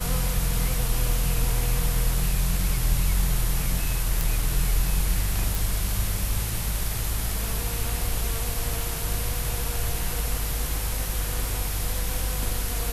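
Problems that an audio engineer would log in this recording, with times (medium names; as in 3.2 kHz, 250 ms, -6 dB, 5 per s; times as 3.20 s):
4.21 s: pop
5.55 s: pop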